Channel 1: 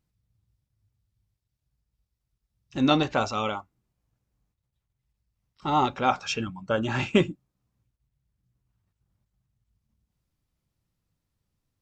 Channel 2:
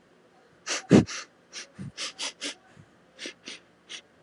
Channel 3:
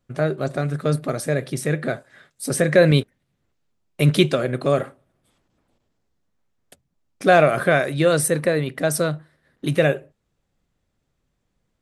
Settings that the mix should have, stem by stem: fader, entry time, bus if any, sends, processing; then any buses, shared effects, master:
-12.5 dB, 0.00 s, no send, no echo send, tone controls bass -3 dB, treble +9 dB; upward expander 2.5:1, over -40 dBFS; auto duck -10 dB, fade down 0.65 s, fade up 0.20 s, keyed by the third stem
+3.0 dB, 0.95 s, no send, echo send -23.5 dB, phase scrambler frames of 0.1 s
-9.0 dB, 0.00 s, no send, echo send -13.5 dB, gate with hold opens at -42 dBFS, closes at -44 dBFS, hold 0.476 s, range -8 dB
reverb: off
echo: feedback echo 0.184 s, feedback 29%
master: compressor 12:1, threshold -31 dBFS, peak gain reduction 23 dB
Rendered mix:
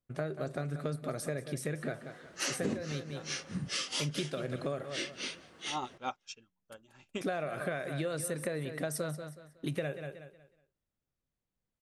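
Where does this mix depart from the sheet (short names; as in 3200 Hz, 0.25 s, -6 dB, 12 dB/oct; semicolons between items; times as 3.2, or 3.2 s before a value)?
stem 1 -12.5 dB -> -5.5 dB; stem 2: entry 0.95 s -> 1.75 s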